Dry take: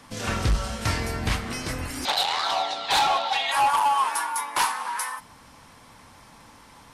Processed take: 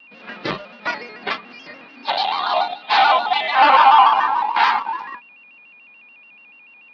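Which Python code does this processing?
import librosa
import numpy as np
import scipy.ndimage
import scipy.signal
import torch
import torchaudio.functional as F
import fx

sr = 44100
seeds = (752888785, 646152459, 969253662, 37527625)

p1 = fx.envelope_flatten(x, sr, power=0.6)
p2 = fx.air_absorb(p1, sr, metres=280.0)
p3 = fx.room_flutter(p2, sr, wall_m=10.6, rt60_s=1.0, at=(3.52, 4.8))
p4 = fx.noise_reduce_blind(p3, sr, reduce_db=14)
p5 = fx.backlash(p4, sr, play_db=-27.5)
p6 = p4 + (p5 * 10.0 ** (-3.0 / 20.0))
p7 = scipy.signal.sosfilt(scipy.signal.ellip(3, 1.0, 40, [200.0, 4600.0], 'bandpass', fs=sr, output='sos'), p6)
p8 = p7 + 10.0 ** (-51.0 / 20.0) * np.sin(2.0 * np.pi * 2600.0 * np.arange(len(p7)) / sr)
p9 = fx.vibrato_shape(p8, sr, shape='square', rate_hz=6.9, depth_cents=100.0)
y = p9 * 10.0 ** (6.5 / 20.0)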